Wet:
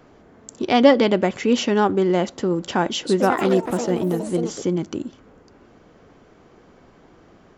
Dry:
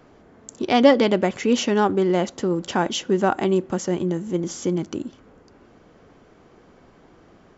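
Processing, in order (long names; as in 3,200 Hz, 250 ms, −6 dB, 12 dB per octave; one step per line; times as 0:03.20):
dynamic equaliser 6,500 Hz, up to −4 dB, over −49 dBFS, Q 4
0:02.88–0:04.99: delay with pitch and tempo change per echo 160 ms, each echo +5 semitones, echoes 3, each echo −6 dB
level +1 dB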